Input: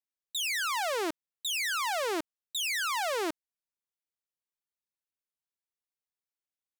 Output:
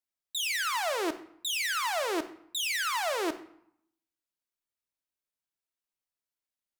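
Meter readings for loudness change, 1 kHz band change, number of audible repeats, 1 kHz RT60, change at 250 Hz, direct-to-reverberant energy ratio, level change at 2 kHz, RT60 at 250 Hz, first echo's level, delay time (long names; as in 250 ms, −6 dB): +0.5 dB, +0.5 dB, no echo audible, 0.75 s, +2.0 dB, 8.0 dB, +0.5 dB, 0.85 s, no echo audible, no echo audible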